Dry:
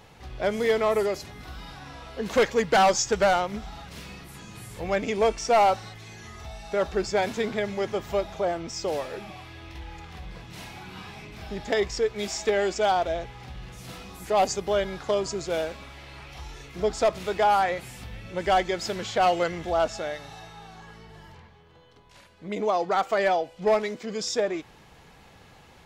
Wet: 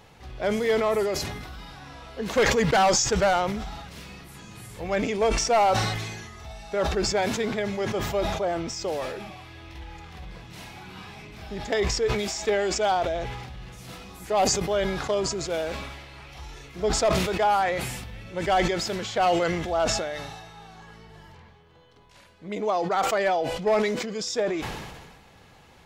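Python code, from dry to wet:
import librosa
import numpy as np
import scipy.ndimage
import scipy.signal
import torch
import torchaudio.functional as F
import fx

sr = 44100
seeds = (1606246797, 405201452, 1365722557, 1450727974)

y = fx.sustainer(x, sr, db_per_s=38.0)
y = y * 10.0 ** (-1.0 / 20.0)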